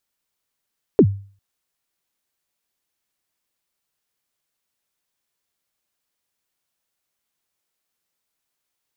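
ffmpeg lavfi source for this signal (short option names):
-f lavfi -i "aevalsrc='0.596*pow(10,-3*t/0.42)*sin(2*PI*(480*0.066/log(99/480)*(exp(log(99/480)*min(t,0.066)/0.066)-1)+99*max(t-0.066,0)))':d=0.4:s=44100"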